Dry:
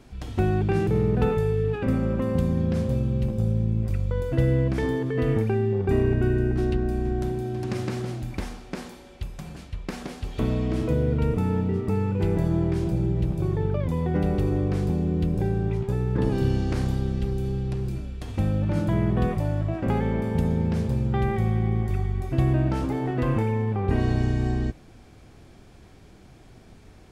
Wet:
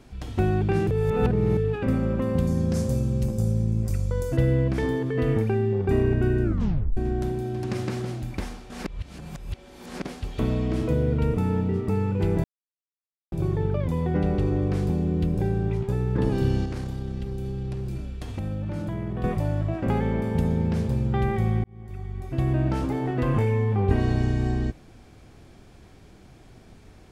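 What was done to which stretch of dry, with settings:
0.91–1.57 reverse
2.47–4.37 resonant high shelf 4500 Hz +10 dB, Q 1.5
6.43 tape stop 0.54 s
8.7–10.05 reverse
12.44–13.32 mute
14.14–14.62 Bessel low-pass 6500 Hz
16.65–19.24 compressor, threshold -26 dBFS
21.64–22.72 fade in
23.32–23.93 doubler 20 ms -4 dB

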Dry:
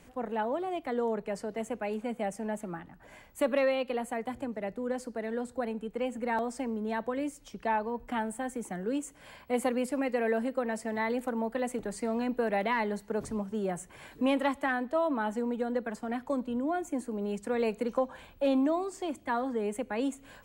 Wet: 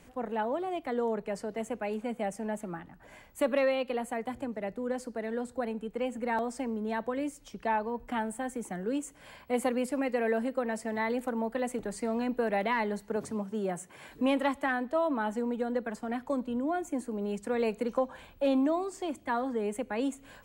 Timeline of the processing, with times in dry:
13.16–14.09 HPF 130 Hz

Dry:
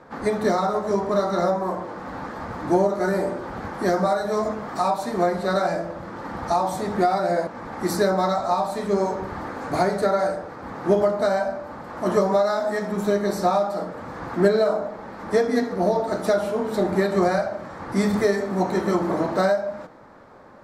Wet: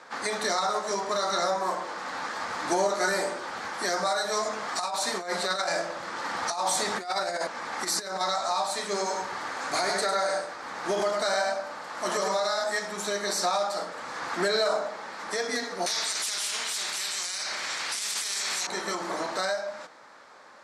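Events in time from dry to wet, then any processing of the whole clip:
4.53–8.21 negative-ratio compressor -24 dBFS, ratio -0.5
8.84–12.64 echo 0.104 s -5.5 dB
15.86–18.67 spectral compressor 4:1
whole clip: weighting filter ITU-R 468; limiter -16.5 dBFS; vocal rider 2 s; gain -2.5 dB

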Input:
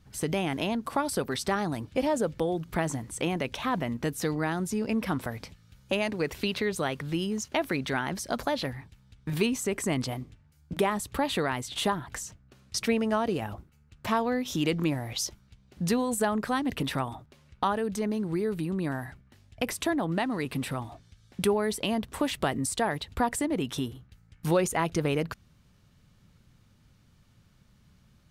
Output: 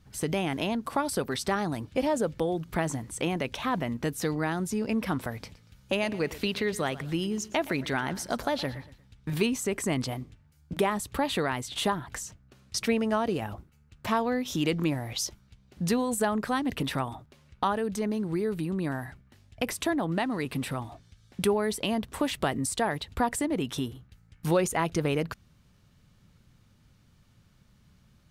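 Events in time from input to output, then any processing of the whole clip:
5.34–9.43 feedback echo 0.118 s, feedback 36%, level -17.5 dB

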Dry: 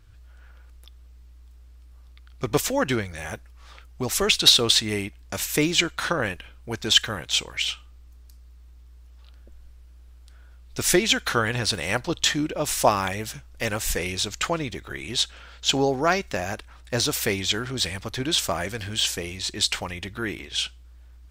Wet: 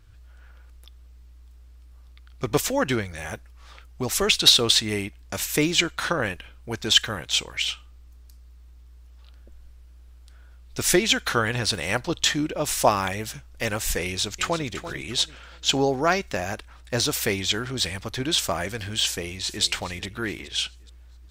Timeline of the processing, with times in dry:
14.04–14.67 echo throw 0.34 s, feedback 30%, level -11.5 dB
19.05–19.63 echo throw 0.42 s, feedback 40%, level -14 dB

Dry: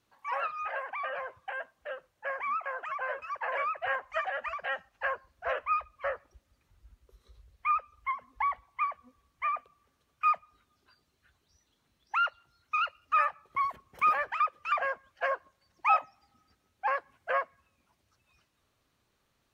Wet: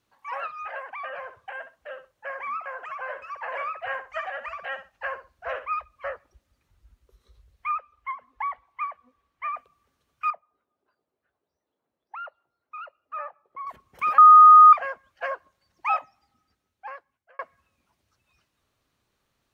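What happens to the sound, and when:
1.07–5.79 feedback echo 65 ms, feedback 18%, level -11 dB
7.69–9.53 tone controls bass -8 dB, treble -10 dB
10.3–13.67 band-pass 550 Hz, Q 1.4
14.18–14.73 bleep 1240 Hz -7 dBFS
15.97–17.39 fade out

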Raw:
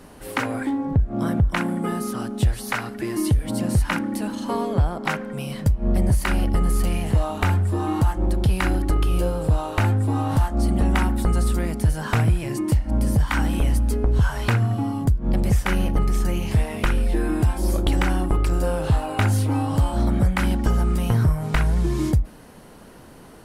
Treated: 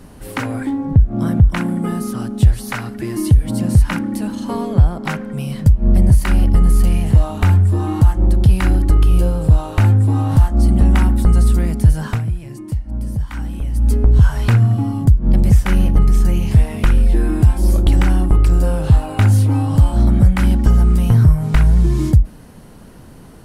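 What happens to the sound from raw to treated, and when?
12.05–13.88 dip -10.5 dB, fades 0.15 s
whole clip: tone controls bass +9 dB, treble +2 dB

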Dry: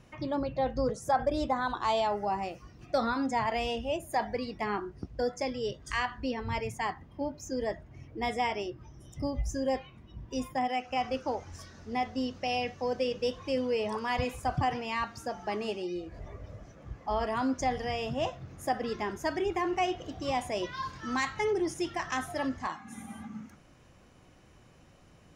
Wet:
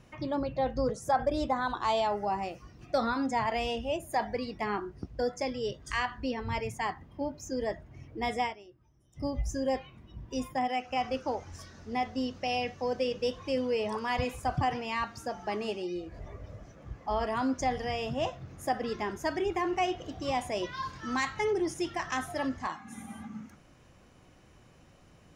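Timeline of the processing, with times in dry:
8.42–9.26 dip -16.5 dB, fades 0.14 s

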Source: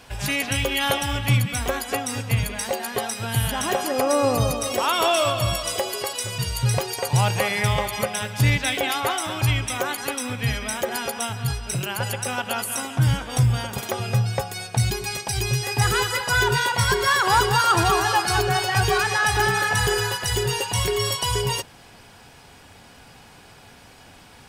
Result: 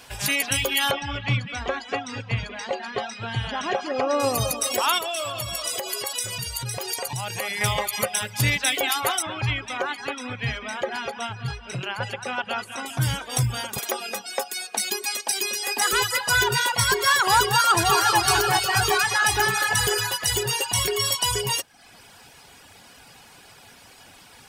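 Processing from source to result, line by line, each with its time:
0.91–4.2 Gaussian blur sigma 2 samples
4.98–7.61 compressor 3:1, threshold -26 dBFS
9.22–12.86 LPF 3000 Hz
13.79–15.93 steep high-pass 220 Hz 48 dB/oct
17.52–18.19 echo throw 0.38 s, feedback 55%, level -5 dB
whole clip: reverb removal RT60 0.64 s; tilt +1.5 dB/oct

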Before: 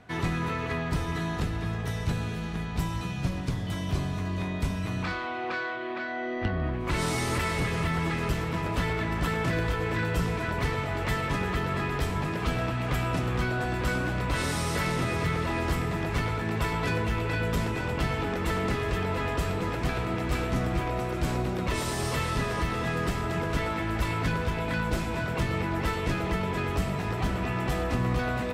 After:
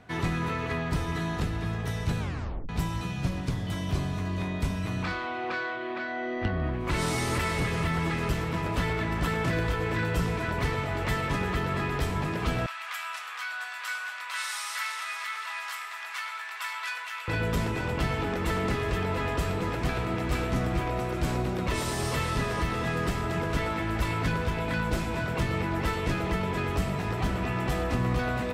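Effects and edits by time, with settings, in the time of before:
2.19 tape stop 0.50 s
12.66–17.28 HPF 1100 Hz 24 dB/oct

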